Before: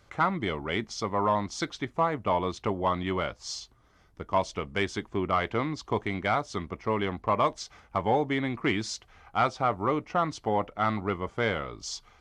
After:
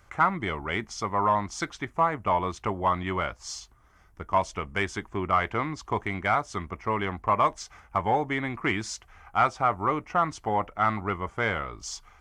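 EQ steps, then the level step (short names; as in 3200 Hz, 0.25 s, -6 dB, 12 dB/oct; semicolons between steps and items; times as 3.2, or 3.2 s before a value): ten-band EQ 125 Hz -5 dB, 250 Hz -6 dB, 500 Hz -7 dB, 4000 Hz -11 dB; +5.5 dB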